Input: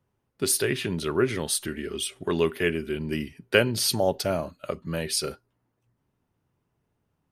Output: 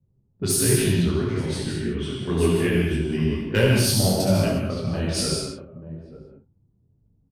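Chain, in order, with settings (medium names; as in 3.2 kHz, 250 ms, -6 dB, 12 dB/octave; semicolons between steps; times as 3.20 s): multi-tap echo 70/150/887 ms -4/-8/-12 dB; 0.92–2.20 s: compression 6:1, threshold -24 dBFS, peak gain reduction 8 dB; level-controlled noise filter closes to 470 Hz, open at -20.5 dBFS; tone controls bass +13 dB, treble +5 dB; saturation -9 dBFS, distortion -19 dB; gated-style reverb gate 230 ms flat, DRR 0.5 dB; detune thickener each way 39 cents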